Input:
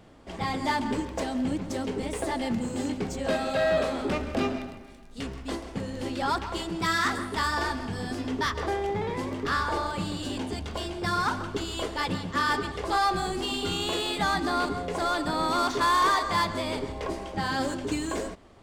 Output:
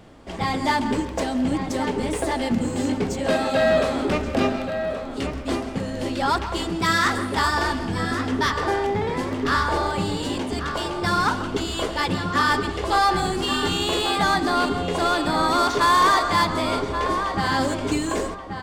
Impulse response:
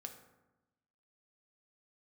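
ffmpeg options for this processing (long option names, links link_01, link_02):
-filter_complex "[0:a]asplit=2[link_01][link_02];[link_02]adelay=1130,lowpass=frequency=2500:poles=1,volume=-7.5dB,asplit=2[link_03][link_04];[link_04]adelay=1130,lowpass=frequency=2500:poles=1,volume=0.25,asplit=2[link_05][link_06];[link_06]adelay=1130,lowpass=frequency=2500:poles=1,volume=0.25[link_07];[link_01][link_03][link_05][link_07]amix=inputs=4:normalize=0,volume=5.5dB"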